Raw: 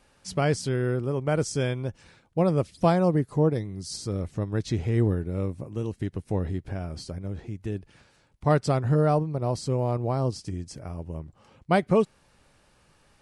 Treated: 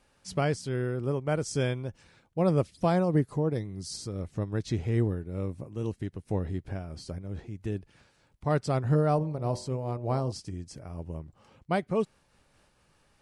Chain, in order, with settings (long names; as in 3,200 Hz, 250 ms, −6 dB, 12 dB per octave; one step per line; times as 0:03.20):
0:09.16–0:10.32: hum removal 46.54 Hz, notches 22
amplitude modulation by smooth noise, depth 65%